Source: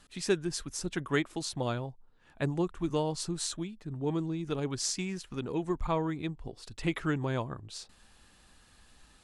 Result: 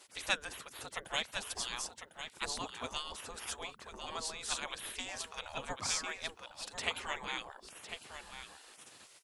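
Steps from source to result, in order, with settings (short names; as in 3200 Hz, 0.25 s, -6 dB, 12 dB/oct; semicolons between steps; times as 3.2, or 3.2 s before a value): echo 1.051 s -9.5 dB; spectral gate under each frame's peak -20 dB weak; gain +7 dB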